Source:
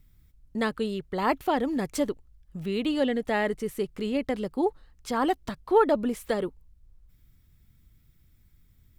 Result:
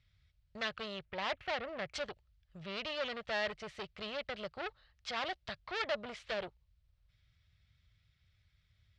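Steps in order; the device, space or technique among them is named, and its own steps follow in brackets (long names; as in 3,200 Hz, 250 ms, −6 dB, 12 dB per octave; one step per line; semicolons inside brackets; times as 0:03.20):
0:01.05–0:01.94: flat-topped bell 5,600 Hz −12 dB
scooped metal amplifier (tube saturation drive 30 dB, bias 0.75; loudspeaker in its box 82–4,500 Hz, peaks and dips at 100 Hz +4 dB, 350 Hz +5 dB, 600 Hz +8 dB, 960 Hz −4 dB; guitar amp tone stack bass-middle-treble 10-0-10)
level +8 dB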